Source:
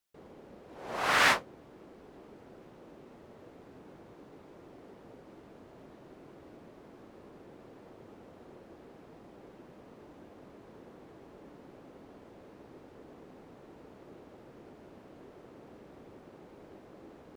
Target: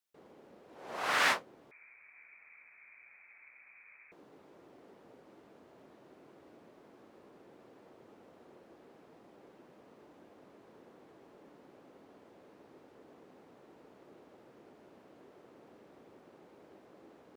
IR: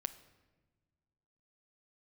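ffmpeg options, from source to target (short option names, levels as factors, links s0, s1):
-filter_complex "[0:a]highpass=f=240:p=1,asettb=1/sr,asplit=3[s0][s1][s2];[s0]atrim=end=1.714[s3];[s1]atrim=start=1.71:end=4.12,asetpts=PTS-STARTPTS,afade=t=in:d=0.004:c=qsin,afade=t=out:st=2.406:d=0.004:c=qsin,lowpass=f=2300:t=q:w=0.5098,lowpass=f=2300:t=q:w=0.6013,lowpass=f=2300:t=q:w=0.9,lowpass=f=2300:t=q:w=2.563,afreqshift=-2700[s4];[s2]atrim=start=4.116[s5];[s3][s4]acrossfade=d=0.004:c1=hsin:c2=qsin[s6];[s6][s5]acrossfade=d=0.004:c1=qsin:c2=hsin,volume=0.631"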